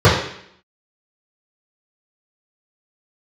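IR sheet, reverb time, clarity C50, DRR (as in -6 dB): 0.65 s, 4.0 dB, -12.0 dB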